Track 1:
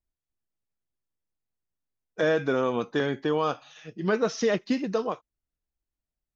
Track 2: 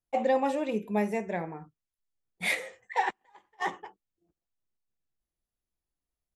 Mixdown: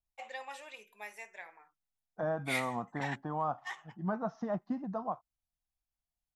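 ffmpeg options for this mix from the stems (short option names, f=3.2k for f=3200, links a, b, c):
-filter_complex "[0:a]firequalizer=gain_entry='entry(190,0);entry(440,-17);entry(710,6);entry(2400,-25)':delay=0.05:min_phase=1,volume=-5dB[a];[1:a]highpass=1.5k,adelay=50,volume=-5dB[b];[a][b]amix=inputs=2:normalize=0"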